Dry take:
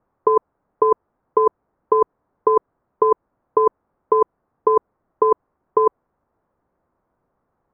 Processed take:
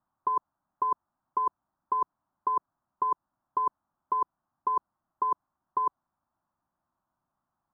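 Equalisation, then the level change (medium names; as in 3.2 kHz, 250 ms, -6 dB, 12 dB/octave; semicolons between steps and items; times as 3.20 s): bass shelf 96 Hz -11 dB; static phaser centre 1.1 kHz, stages 4; -7.5 dB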